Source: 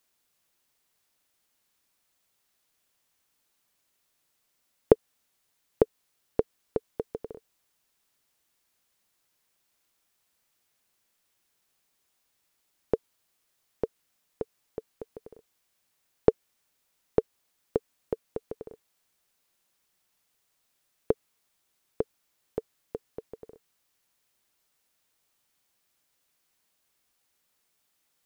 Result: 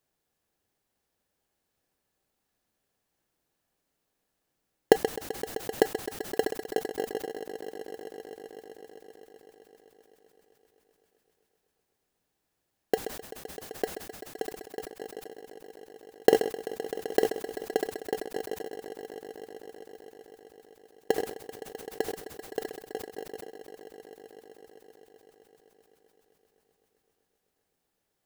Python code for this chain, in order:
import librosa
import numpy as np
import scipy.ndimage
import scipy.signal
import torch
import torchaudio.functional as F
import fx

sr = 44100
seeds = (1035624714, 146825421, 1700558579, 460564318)

p1 = scipy.signal.sosfilt(scipy.signal.butter(2, 320.0, 'highpass', fs=sr, output='sos'), x)
p2 = fx.tilt_shelf(p1, sr, db=4.5, hz=870.0)
p3 = fx.sample_hold(p2, sr, seeds[0], rate_hz=1200.0, jitter_pct=0)
p4 = p2 + (p3 * 10.0 ** (-4.5 / 20.0))
p5 = fx.small_body(p4, sr, hz=(790.0, 1700.0), ring_ms=45, db=6)
p6 = p5 + fx.echo_swell(p5, sr, ms=129, loudest=5, wet_db=-16.5, dry=0)
p7 = fx.sustainer(p6, sr, db_per_s=90.0)
y = p7 * 10.0 ** (-4.0 / 20.0)